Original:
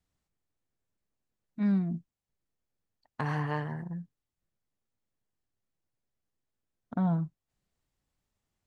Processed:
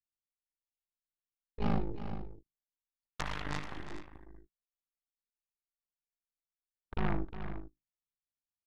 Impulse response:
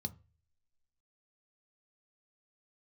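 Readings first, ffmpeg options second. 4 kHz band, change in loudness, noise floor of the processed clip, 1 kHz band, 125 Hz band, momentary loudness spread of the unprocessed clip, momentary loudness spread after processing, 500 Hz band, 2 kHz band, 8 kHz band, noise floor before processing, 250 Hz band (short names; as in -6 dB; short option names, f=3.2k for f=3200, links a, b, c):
+6.5 dB, -7.0 dB, under -85 dBFS, -2.5 dB, -7.5 dB, 13 LU, 19 LU, -1.0 dB, -1.5 dB, n/a, under -85 dBFS, -9.0 dB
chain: -filter_complex "[0:a]bandreject=f=50:t=h:w=6,bandreject=f=100:t=h:w=6,bandreject=f=150:t=h:w=6,aeval=exprs='val(0)*sin(2*PI*26*n/s)':c=same,aeval=exprs='0.1*(cos(1*acos(clip(val(0)/0.1,-1,1)))-cos(1*PI/2))+0.0316*(cos(3*acos(clip(val(0)/0.1,-1,1)))-cos(3*PI/2))+0.0251*(cos(6*acos(clip(val(0)/0.1,-1,1)))-cos(6*PI/2))':c=same,equalizer=f=460:t=o:w=1.8:g=-4.5,asplit=2[a][b];[b]aecho=0:1:64|357|434:0.126|0.266|0.211[c];[a][c]amix=inputs=2:normalize=0,volume=1.5dB"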